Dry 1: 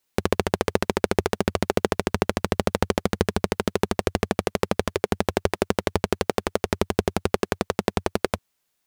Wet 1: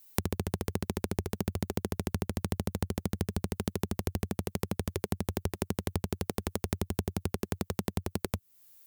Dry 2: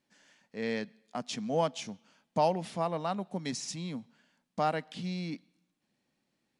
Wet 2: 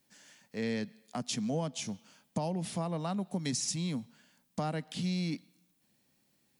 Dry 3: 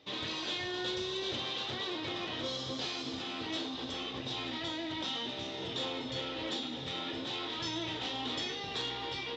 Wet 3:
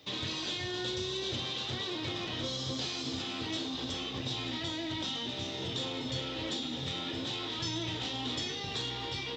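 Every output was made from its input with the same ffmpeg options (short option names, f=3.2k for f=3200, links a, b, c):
-filter_complex "[0:a]acrossover=split=350[a][b];[b]acompressor=threshold=-42dB:ratio=2[c];[a][c]amix=inputs=2:normalize=0,equalizer=f=98:w=0.85:g=6.5,acompressor=threshold=-30dB:ratio=5,aemphasis=mode=production:type=50fm,volume=2dB"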